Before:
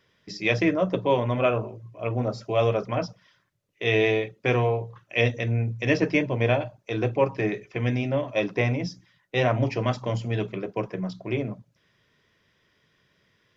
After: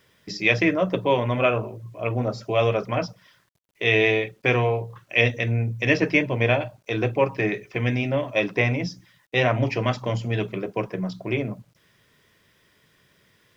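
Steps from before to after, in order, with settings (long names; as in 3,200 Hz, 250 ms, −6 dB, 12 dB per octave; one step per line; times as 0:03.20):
dynamic equaliser 2,300 Hz, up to +5 dB, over −39 dBFS, Q 0.99
in parallel at −2.5 dB: downward compressor 20 to 1, threshold −34 dBFS, peak gain reduction 21 dB
on the sum: bit reduction 11 bits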